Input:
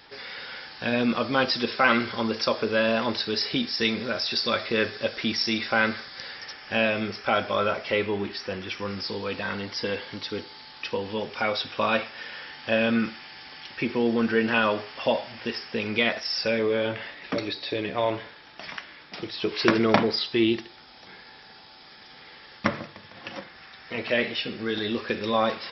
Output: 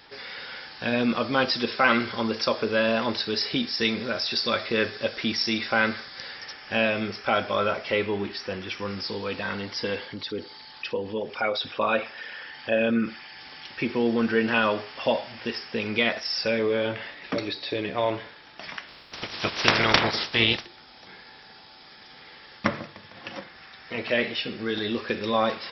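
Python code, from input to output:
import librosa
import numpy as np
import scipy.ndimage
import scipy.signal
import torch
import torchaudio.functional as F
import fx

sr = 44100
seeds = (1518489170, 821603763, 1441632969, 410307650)

y = fx.envelope_sharpen(x, sr, power=1.5, at=(10.06, 13.4))
y = fx.spec_clip(y, sr, under_db=24, at=(18.87, 20.65), fade=0.02)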